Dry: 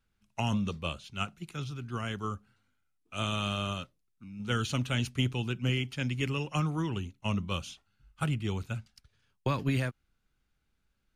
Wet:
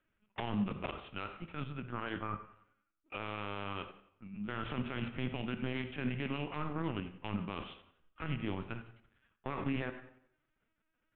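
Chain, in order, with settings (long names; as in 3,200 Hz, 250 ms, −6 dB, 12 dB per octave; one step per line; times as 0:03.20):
phase distortion by the signal itself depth 0.23 ms
linear-prediction vocoder at 8 kHz pitch kept
low-shelf EQ 160 Hz −10 dB
convolution reverb RT60 0.70 s, pre-delay 22 ms, DRR 10.5 dB
shaped tremolo saw up 11 Hz, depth 40%
low-pass filter 2,800 Hz 24 dB per octave
brickwall limiter −28.5 dBFS, peak gain reduction 10.5 dB
level +4 dB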